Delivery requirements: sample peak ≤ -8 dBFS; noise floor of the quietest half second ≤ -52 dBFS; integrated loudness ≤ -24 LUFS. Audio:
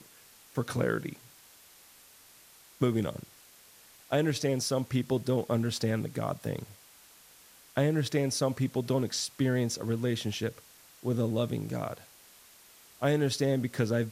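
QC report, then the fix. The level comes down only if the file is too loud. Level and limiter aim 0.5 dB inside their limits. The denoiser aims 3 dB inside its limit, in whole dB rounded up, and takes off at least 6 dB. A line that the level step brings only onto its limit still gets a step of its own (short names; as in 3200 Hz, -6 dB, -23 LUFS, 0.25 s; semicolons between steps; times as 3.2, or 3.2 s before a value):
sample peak -13.0 dBFS: OK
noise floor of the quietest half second -57 dBFS: OK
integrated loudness -31.0 LUFS: OK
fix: none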